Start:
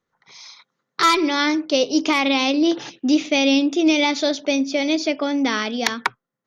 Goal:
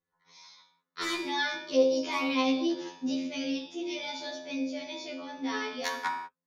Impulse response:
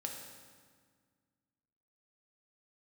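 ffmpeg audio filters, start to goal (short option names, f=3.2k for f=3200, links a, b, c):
-filter_complex "[0:a]asettb=1/sr,asplit=3[a][b][c];[a]atrim=end=3.144[d];[b]atrim=start=3.14:end=5.5,asetpts=PTS-STARTPTS,afade=t=in:d=0.004:c=qsin,afade=t=out:st=2.356:d=0.004:c=qsin,flanger=delay=8.5:depth=3.2:regen=69:speed=1.7:shape=triangular[e];[c]atrim=start=5.496[f];[d][e]acrossfade=d=0.004:c1=hsin:c2=qsin[g];[g][f]acrossfade=d=0.004:c1=qsin:c2=hsin[h];[1:a]atrim=start_sample=2205,afade=t=out:st=0.43:d=0.01,atrim=end_sample=19404,asetrate=83790,aresample=44100[i];[h][i]afir=irnorm=-1:irlink=0,afftfilt=real='re*2*eq(mod(b,4),0)':imag='im*2*eq(mod(b,4),0)':win_size=2048:overlap=0.75,volume=-1.5dB"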